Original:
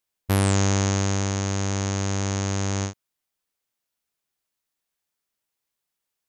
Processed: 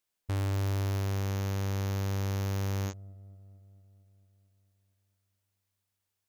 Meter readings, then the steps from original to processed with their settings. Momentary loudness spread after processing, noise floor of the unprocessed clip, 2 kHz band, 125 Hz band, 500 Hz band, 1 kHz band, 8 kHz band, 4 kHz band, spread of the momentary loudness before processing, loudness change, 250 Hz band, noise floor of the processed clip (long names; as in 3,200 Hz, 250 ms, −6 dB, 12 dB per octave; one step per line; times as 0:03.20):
8 LU, −83 dBFS, −11.0 dB, −5.5 dB, −9.5 dB, −10.5 dB, −18.0 dB, −12.0 dB, 5 LU, −8.0 dB, −11.5 dB, −84 dBFS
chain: gain into a clipping stage and back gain 27 dB
delay with a low-pass on its return 226 ms, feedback 68%, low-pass 430 Hz, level −17 dB
level −1.5 dB